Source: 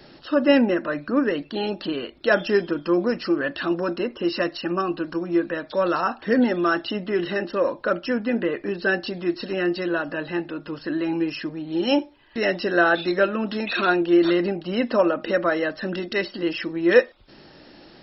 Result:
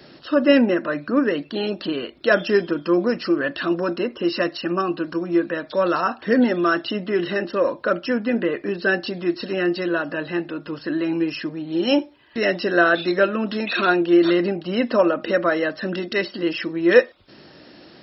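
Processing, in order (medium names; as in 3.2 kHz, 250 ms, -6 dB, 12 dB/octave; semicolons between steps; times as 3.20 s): high-pass 75 Hz; band-stop 840 Hz, Q 12; trim +2 dB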